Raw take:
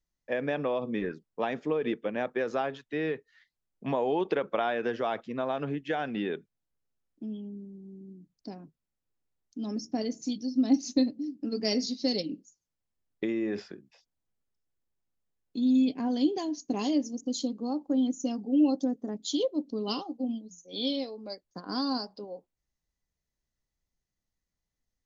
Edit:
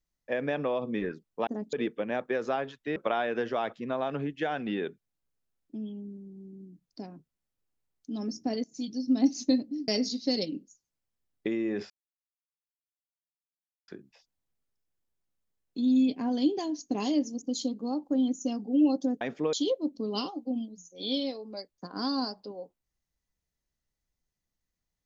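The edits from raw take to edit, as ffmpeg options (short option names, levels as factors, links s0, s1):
-filter_complex "[0:a]asplit=9[s0][s1][s2][s3][s4][s5][s6][s7][s8];[s0]atrim=end=1.472[s9];[s1]atrim=start=18.998:end=19.262[s10];[s2]atrim=start=1.788:end=3.022[s11];[s3]atrim=start=4.438:end=10.12,asetpts=PTS-STARTPTS,afade=t=out:st=5.678:d=0.004:c=hsin:silence=0.112202[s12];[s4]atrim=start=10.12:end=11.362,asetpts=PTS-STARTPTS,afade=t=in:d=0.27:silence=0.112202[s13];[s5]atrim=start=11.648:end=13.67,asetpts=PTS-STARTPTS,afade=t=out:st=2.018:d=0.004:c=hsin,apad=pad_dur=1.98[s14];[s6]atrim=start=13.67:end=19.002,asetpts=PTS-STARTPTS,afade=t=in:d=0.004:c=hsin[s15];[s7]atrim=start=1.468:end=1.792[s16];[s8]atrim=start=19.258[s17];[s9][s10]acrossfade=d=0.004:c1=hsin:c2=hsin[s18];[s18][s11]acrossfade=d=0.004:c1=hsin:c2=hsin[s19];[s12][s13]concat=n=2:v=0:a=1[s20];[s19][s20]acrossfade=d=0.004:c1=hsin:c2=hsin[s21];[s14][s15]concat=n=2:v=0:a=1[s22];[s21][s22]acrossfade=d=0.004:c1=hsin:c2=hsin[s23];[s23][s16]acrossfade=d=0.004:c1=hsin:c2=hsin[s24];[s24][s17]acrossfade=d=0.004:c1=hsin:c2=hsin"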